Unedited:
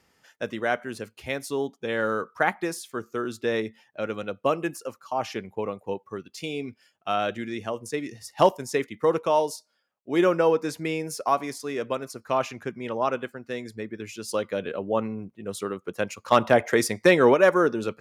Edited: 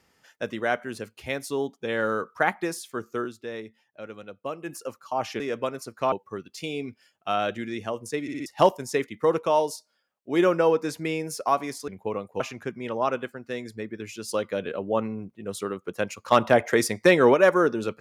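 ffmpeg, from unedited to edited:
-filter_complex "[0:a]asplit=11[a][b][c][d][e][f][g][h][i][j][k];[a]atrim=end=3.36,asetpts=PTS-STARTPTS,afade=t=out:st=3.24:d=0.12:c=qua:silence=0.334965[l];[b]atrim=start=3.36:end=4.61,asetpts=PTS-STARTPTS,volume=-9.5dB[m];[c]atrim=start=4.61:end=5.402,asetpts=PTS-STARTPTS,afade=t=in:d=0.12:c=qua:silence=0.334965[n];[d]atrim=start=11.678:end=12.402[o];[e]atrim=start=5.918:end=8.082[p];[f]atrim=start=8.018:end=8.082[q];[g]atrim=start=8.018:end=8.082[r];[h]atrim=start=8.018:end=8.082[s];[i]atrim=start=8.258:end=11.682[t];[j]atrim=start=5.398:end=5.922[u];[k]atrim=start=12.398[v];[l][m][n]concat=n=3:v=0:a=1[w];[w][o]acrossfade=d=0.004:c1=hsin:c2=hsin[x];[x][p]acrossfade=d=0.004:c1=hsin:c2=hsin[y];[y][q]acrossfade=d=0.004:c1=hsin:c2=hsin[z];[z][r]acrossfade=d=0.004:c1=hsin:c2=hsin[aa];[aa][s]acrossfade=d=0.004:c1=hsin:c2=hsin[ab];[ab][t]acrossfade=d=0.004:c1=hsin:c2=hsin[ac];[ac][u]acrossfade=d=0.004:c1=hsin:c2=hsin[ad];[ad][v]acrossfade=d=0.004:c1=hsin:c2=hsin"

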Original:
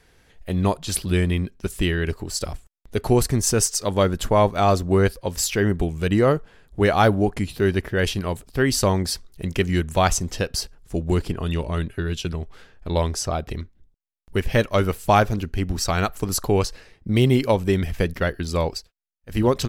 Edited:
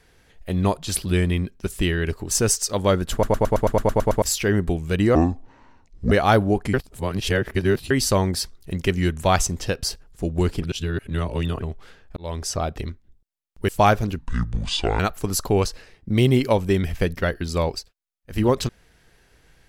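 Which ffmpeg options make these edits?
-filter_complex "[0:a]asplit=22[a][b][c][d][e][f][g][h][i][j][k][l][m][n][o][p][q][r][s][t][u][v];[a]atrim=end=2.312[w];[b]atrim=start=3.428:end=4.352[x];[c]atrim=start=4.238:end=4.352[y];[d]atrim=start=4.238:end=4.352[z];[e]atrim=start=4.238:end=4.352[aa];[f]atrim=start=4.238:end=4.352[ab];[g]atrim=start=4.238:end=4.352[ac];[h]atrim=start=4.238:end=4.352[ad];[i]atrim=start=4.238:end=4.352[ae];[j]atrim=start=4.238:end=4.352[af];[k]atrim=start=4.238:end=4.352[ag];[l]atrim=start=5.338:end=6.274[ah];[m]atrim=start=6.27:end=6.83,asetpts=PTS-STARTPTS,asetrate=25578,aresample=44100,atrim=end_sample=42579,asetpts=PTS-STARTPTS[ai];[n]atrim=start=6.826:end=7.452[aj];[o]atrim=start=7.448:end=8.622,asetpts=PTS-STARTPTS,areverse[ak];[p]atrim=start=8.618:end=11.342[al];[q]atrim=start=11.338:end=12.342,asetpts=PTS-STARTPTS,areverse[am];[r]atrim=start=12.338:end=12.88,asetpts=PTS-STARTPTS,afade=t=out:st=0.538:d=0.004:c=hsin[an];[s]atrim=start=12.88:end=14.402,asetpts=PTS-STARTPTS,afade=t=in:d=0.35[ao];[t]atrim=start=14.978:end=15.484[ap];[u]atrim=start=15.48:end=15.98,asetpts=PTS-STARTPTS,asetrate=27342,aresample=44100[aq];[v]atrim=start=15.976[ar];[w][x]acrossfade=d=0.004:c1=hsin:c2=hsin[as];[as][y]acrossfade=d=0.004:c1=hsin:c2=hsin[at];[at][z]acrossfade=d=0.004:c1=hsin:c2=hsin[au];[au][aa]acrossfade=d=0.004:c1=hsin:c2=hsin[av];[av][ab]acrossfade=d=0.004:c1=hsin:c2=hsin[aw];[aw][ac]acrossfade=d=0.004:c1=hsin:c2=hsin[ax];[ax][ad]acrossfade=d=0.004:c1=hsin:c2=hsin[ay];[ay][ae]acrossfade=d=0.004:c1=hsin:c2=hsin[az];[az][af]acrossfade=d=0.004:c1=hsin:c2=hsin[ba];[ba][ag]acrossfade=d=0.004:c1=hsin:c2=hsin[bb];[bb][ah]acrossfade=d=0.004:c1=hsin:c2=hsin[bc];[bc][ai]acrossfade=d=0.004:c1=hsin:c2=hsin[bd];[bd][aj]acrossfade=d=0.004:c1=hsin:c2=hsin[be];[be][ak]acrossfade=d=0.004:c1=hsin:c2=hsin[bf];[bf][al]acrossfade=d=0.004:c1=hsin:c2=hsin[bg];[bg][am]acrossfade=d=0.004:c1=hsin:c2=hsin[bh];[an][ao]concat=n=2:v=0:a=1[bi];[bh][bi]acrossfade=d=0.004:c1=hsin:c2=hsin[bj];[bj][ap]acrossfade=d=0.004:c1=hsin:c2=hsin[bk];[bk][aq]acrossfade=d=0.004:c1=hsin:c2=hsin[bl];[bl][ar]acrossfade=d=0.004:c1=hsin:c2=hsin"

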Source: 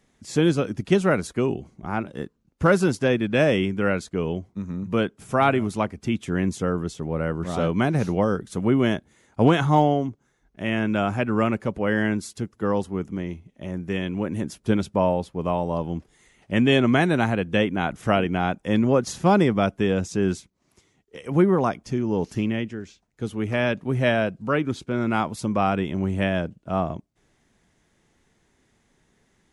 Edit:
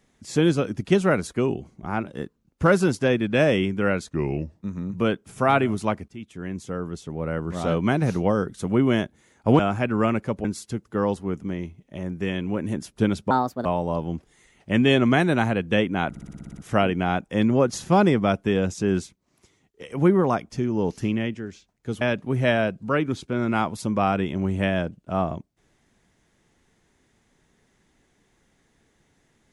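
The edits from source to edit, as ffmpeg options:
-filter_complex "[0:a]asplit=17[a][b][c][d][e][f][g][h][i][j][k][l][m][n][o][p][q];[a]atrim=end=4.114[r];[b]atrim=start=4.11:end=4.53,asetpts=PTS-STARTPTS,asetrate=37485,aresample=44100[s];[c]atrim=start=4.526:end=6.01,asetpts=PTS-STARTPTS,afade=t=out:st=1.48:d=0.004:c=hsin:silence=0.158489[t];[d]atrim=start=6.01:end=9.522,asetpts=PTS-STARTPTS,afade=t=in:d=1.61:silence=0.158489[u];[e]atrim=start=10.968:end=11.822[v];[f]atrim=start=12.118:end=14.984[w];[g]atrim=start=14.98:end=15.47,asetpts=PTS-STARTPTS,asetrate=62181,aresample=44100[x];[h]atrim=start=15.466:end=17.972[y];[i]atrim=start=17.908:end=17.972[z];[j]atrim=start=17.908:end=17.972[aa];[k]atrim=start=17.908:end=17.972[ab];[l]atrim=start=17.908:end=17.972[ac];[m]atrim=start=17.908:end=17.972[ad];[n]atrim=start=17.908:end=17.972[ae];[o]atrim=start=17.908:end=17.972[af];[p]atrim=start=17.908:end=23.352[ag];[q]atrim=start=23.598[ah];[r][s]acrossfade=d=0.004:c1=hsin:c2=hsin[ai];[t][u]concat=n=2:v=0:a=1[aj];[ai][aj]acrossfade=d=0.004:c1=hsin:c2=hsin[ak];[ak][v]acrossfade=d=0.004:c1=hsin:c2=hsin[al];[al][w]acrossfade=d=0.004:c1=hsin:c2=hsin[am];[am][x]acrossfade=d=0.004:c1=hsin:c2=hsin[an];[an][y]acrossfade=d=0.004:c1=hsin:c2=hsin[ao];[ao][z]acrossfade=d=0.004:c1=hsin:c2=hsin[ap];[ap][aa]acrossfade=d=0.004:c1=hsin:c2=hsin[aq];[aq][ab]acrossfade=d=0.004:c1=hsin:c2=hsin[ar];[ar][ac]acrossfade=d=0.004:c1=hsin:c2=hsin[as];[as][ad]acrossfade=d=0.004:c1=hsin:c2=hsin[at];[at][ae]acrossfade=d=0.004:c1=hsin:c2=hsin[au];[au][af]acrossfade=d=0.004:c1=hsin:c2=hsin[av];[av][ag]acrossfade=d=0.004:c1=hsin:c2=hsin[aw];[aw][ah]acrossfade=d=0.004:c1=hsin:c2=hsin"

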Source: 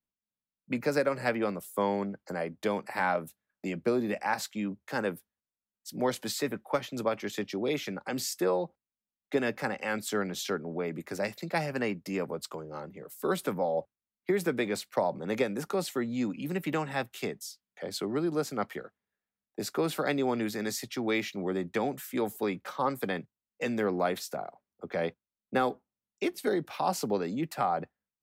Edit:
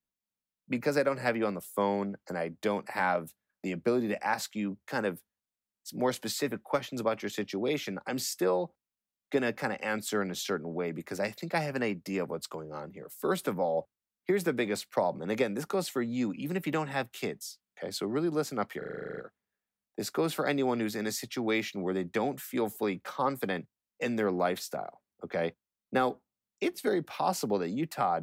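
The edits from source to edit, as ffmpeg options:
-filter_complex "[0:a]asplit=11[a][b][c][d][e][f][g][h][i][j][k];[a]atrim=end=18.822[l];[b]atrim=start=18.778:end=18.822[m];[c]atrim=start=18.778:end=18.822[n];[d]atrim=start=18.778:end=18.822[o];[e]atrim=start=18.778:end=18.822[p];[f]atrim=start=18.778:end=18.822[q];[g]atrim=start=18.778:end=18.822[r];[h]atrim=start=18.778:end=18.822[s];[i]atrim=start=18.778:end=18.822[t];[j]atrim=start=18.778:end=18.822[u];[k]atrim=start=18.778[v];[l][m]acrossfade=d=0.004:c1=hsin:c2=hsin[w];[w][n]acrossfade=d=0.004:c1=hsin:c2=hsin[x];[x][o]acrossfade=d=0.004:c1=hsin:c2=hsin[y];[y][p]acrossfade=d=0.004:c1=hsin:c2=hsin[z];[z][q]acrossfade=d=0.004:c1=hsin:c2=hsin[aa];[aa][r]acrossfade=d=0.004:c1=hsin:c2=hsin[ab];[ab][s]acrossfade=d=0.004:c1=hsin:c2=hsin[ac];[ac][t]acrossfade=d=0.004:c1=hsin:c2=hsin[ad];[ad][u]acrossfade=d=0.004:c1=hsin:c2=hsin[ae];[ae][v]acrossfade=d=0.004:c1=hsin:c2=hsin"

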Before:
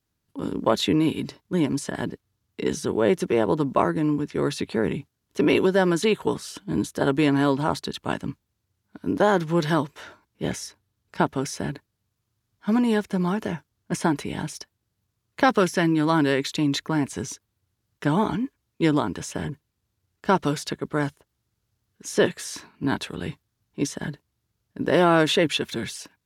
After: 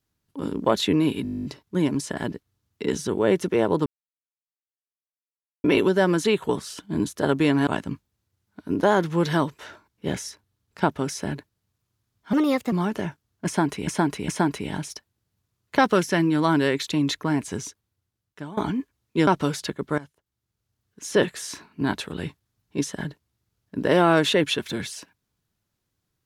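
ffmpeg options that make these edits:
-filter_complex "[0:a]asplit=22[a][b][c][d][e][f][g][h][i][j][k][l][m][n][o][p][q][r][s][t][u][v];[a]atrim=end=1.252[w];[b]atrim=start=1.228:end=1.252[x];[c]atrim=start=1.228:end=1.252[y];[d]atrim=start=1.228:end=1.252[z];[e]atrim=start=1.228:end=1.252[aa];[f]atrim=start=1.228:end=1.252[ab];[g]atrim=start=1.228:end=1.252[ac];[h]atrim=start=1.228:end=1.252[ad];[i]atrim=start=1.228:end=1.252[ae];[j]atrim=start=1.228:end=1.252[af];[k]atrim=start=1.228:end=1.252[ag];[l]atrim=start=1.228:end=3.64,asetpts=PTS-STARTPTS,afade=t=out:st=2.408:d=0.004:c=hsin[ah];[m]atrim=start=3.64:end=5.42,asetpts=PTS-STARTPTS,volume=0[ai];[n]atrim=start=5.42:end=7.452,asetpts=PTS-STARTPTS,afade=t=in:d=0.004:c=hsin[aj];[o]atrim=start=8.038:end=12.704[ak];[p]atrim=start=12.7:end=13.19,asetpts=PTS-STARTPTS,asetrate=55125,aresample=44100,atrim=end_sample=17287,asetpts=PTS-STARTPTS[al];[q]atrim=start=13.186:end=14.342[am];[r]atrim=start=13.928:end=14.342[an];[s]atrim=start=13.928:end=18.22,asetpts=PTS-STARTPTS,afade=t=out:st=3.272:d=1.02:silence=0.0944061[ao];[t]atrim=start=18.22:end=18.922,asetpts=PTS-STARTPTS,afade=t=in:d=0.004:c=hsin:silence=0.0944061[ap];[u]atrim=start=20.298:end=21.01,asetpts=PTS-STARTPTS,afade=t=out:st=0.708:d=0.004:c=hsin:silence=0.125893[aq];[v]atrim=start=21.01,asetpts=PTS-STARTPTS,afade=t=in:d=1.2:silence=0.125893[ar];[w][x]acrossfade=d=0.004:c1=hsin:c2=hsin[as];[as][y]acrossfade=d=0.004:c1=hsin:c2=hsin[at];[at][z]acrossfade=d=0.004:c1=hsin:c2=hsin[au];[au][aa]acrossfade=d=0.004:c1=hsin:c2=hsin[av];[av][ab]acrossfade=d=0.004:c1=hsin:c2=hsin[aw];[aw][ac]acrossfade=d=0.004:c1=hsin:c2=hsin[ax];[ax][ad]acrossfade=d=0.004:c1=hsin:c2=hsin[ay];[ay][ae]acrossfade=d=0.004:c1=hsin:c2=hsin[az];[az][af]acrossfade=d=0.004:c1=hsin:c2=hsin[ba];[ba][ag]acrossfade=d=0.004:c1=hsin:c2=hsin[bb];[ah][ai][aj]concat=n=3:v=0:a=1[bc];[bb][bc]acrossfade=d=0.004:c1=hsin:c2=hsin[bd];[bd][ak]acrossfade=d=0.004:c1=hsin:c2=hsin[be];[be][al]acrossfade=d=0.004:c1=hsin:c2=hsin[bf];[bf][am]acrossfade=d=0.004:c1=hsin:c2=hsin[bg];[bg][an]acrossfade=d=0.004:c1=hsin:c2=hsin[bh];[ao][ap]concat=n=2:v=0:a=1[bi];[bh][bi]acrossfade=d=0.004:c1=hsin:c2=hsin[bj];[aq][ar]concat=n=2:v=0:a=1[bk];[bj][bk]acrossfade=d=0.004:c1=hsin:c2=hsin"

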